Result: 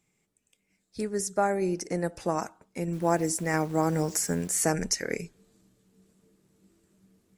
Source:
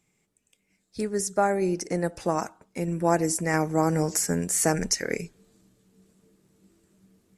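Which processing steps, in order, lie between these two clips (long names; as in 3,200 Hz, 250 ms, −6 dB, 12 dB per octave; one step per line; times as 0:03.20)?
0:02.93–0:04.65: hold until the input has moved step −44.5 dBFS
level −2.5 dB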